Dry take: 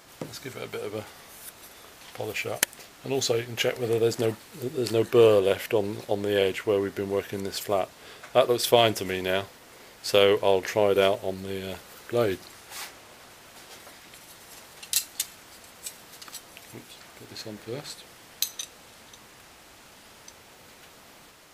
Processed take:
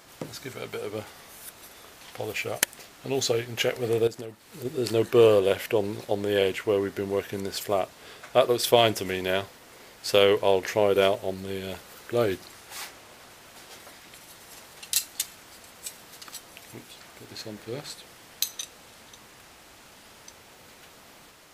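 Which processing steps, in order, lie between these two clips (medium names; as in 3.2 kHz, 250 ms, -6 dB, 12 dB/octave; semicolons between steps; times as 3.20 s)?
4.07–4.65 s: compression 8:1, threshold -35 dBFS, peak gain reduction 14.5 dB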